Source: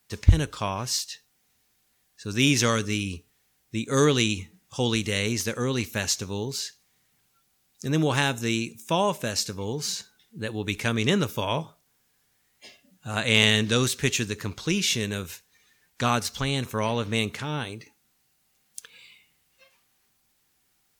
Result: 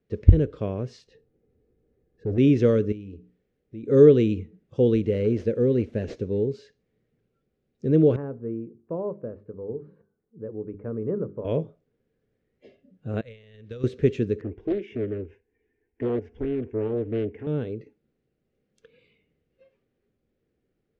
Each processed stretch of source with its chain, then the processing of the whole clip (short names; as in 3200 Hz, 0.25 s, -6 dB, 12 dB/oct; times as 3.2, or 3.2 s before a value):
1.07–2.38 tilt shelf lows +7.5 dB, about 1200 Hz + comb 2.4 ms, depth 30% + overloaded stage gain 28.5 dB
2.92–3.84 notches 60/120/180/240/300 Hz + compressor 2:1, threshold -47 dBFS
5.04–6.51 CVSD 64 kbps + bell 1200 Hz -5 dB 0.44 oct
8.16–11.45 ladder low-pass 1300 Hz, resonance 50% + notches 50/100/150/200/250/300/350/400 Hz
13.21–13.84 bell 300 Hz -14.5 dB 2.1 oct + compressor 8:1, threshold -30 dBFS + gate -36 dBFS, range -12 dB
14.41–17.47 air absorption 190 m + fixed phaser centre 840 Hz, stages 8 + Doppler distortion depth 0.67 ms
whole clip: LPF 2000 Hz 12 dB/oct; resonant low shelf 650 Hz +11 dB, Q 3; gain -8.5 dB